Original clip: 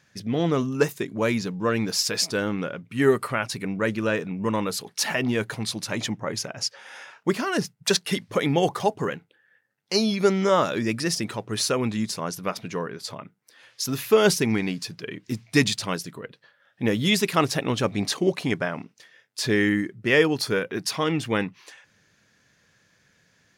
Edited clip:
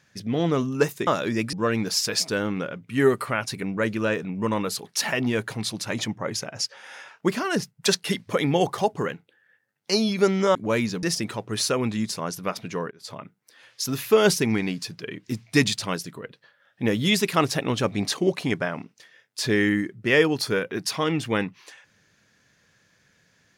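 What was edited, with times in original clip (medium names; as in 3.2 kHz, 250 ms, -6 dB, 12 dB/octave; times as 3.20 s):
1.07–1.55 s: swap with 10.57–11.03 s
12.91–13.17 s: fade in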